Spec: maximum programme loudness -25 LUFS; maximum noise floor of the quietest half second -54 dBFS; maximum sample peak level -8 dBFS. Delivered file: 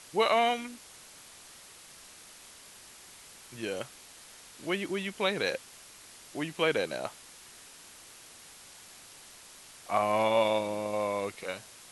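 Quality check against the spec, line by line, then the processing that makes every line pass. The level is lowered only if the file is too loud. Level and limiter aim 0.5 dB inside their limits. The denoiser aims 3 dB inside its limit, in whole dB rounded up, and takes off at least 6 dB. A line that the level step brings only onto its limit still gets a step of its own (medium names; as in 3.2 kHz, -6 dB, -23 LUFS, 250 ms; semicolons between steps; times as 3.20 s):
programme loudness -31.0 LUFS: pass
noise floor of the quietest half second -52 dBFS: fail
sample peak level -13.0 dBFS: pass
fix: noise reduction 6 dB, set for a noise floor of -52 dBFS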